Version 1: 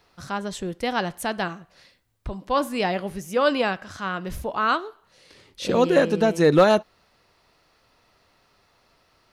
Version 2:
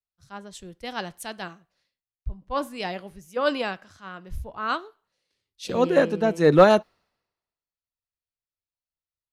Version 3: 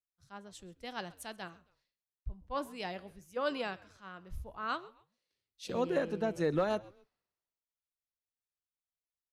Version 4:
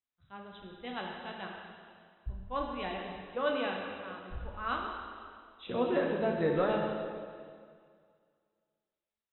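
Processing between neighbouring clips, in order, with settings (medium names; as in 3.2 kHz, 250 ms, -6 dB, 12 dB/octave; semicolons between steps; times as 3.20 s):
three bands expanded up and down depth 100%; trim -5.5 dB
compression 6:1, threshold -18 dBFS, peak gain reduction 9.5 dB; frequency-shifting echo 133 ms, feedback 33%, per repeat -100 Hz, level -22 dB; trim -9 dB
brick-wall FIR low-pass 4 kHz; plate-style reverb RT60 2.1 s, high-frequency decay 0.95×, DRR -0.5 dB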